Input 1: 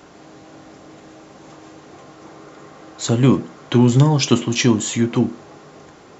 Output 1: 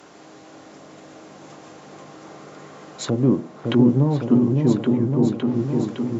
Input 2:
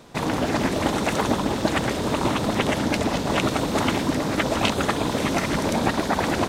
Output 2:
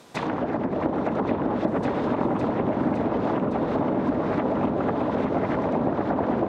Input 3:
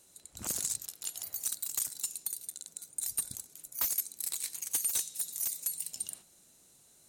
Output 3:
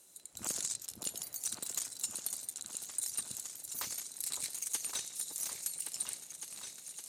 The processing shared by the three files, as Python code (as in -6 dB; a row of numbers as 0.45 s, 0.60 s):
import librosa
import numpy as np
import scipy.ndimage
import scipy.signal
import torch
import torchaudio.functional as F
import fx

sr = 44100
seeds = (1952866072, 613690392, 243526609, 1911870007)

y = fx.env_lowpass_down(x, sr, base_hz=590.0, full_db=-17.5)
y = fx.highpass(y, sr, hz=200.0, slope=6)
y = fx.high_shelf(y, sr, hz=8800.0, db=4.5)
y = fx.echo_opening(y, sr, ms=560, hz=750, octaves=2, feedback_pct=70, wet_db=-3)
y = F.gain(torch.from_numpy(y), -1.0).numpy()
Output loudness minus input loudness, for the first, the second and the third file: -2.5 LU, -2.0 LU, -4.0 LU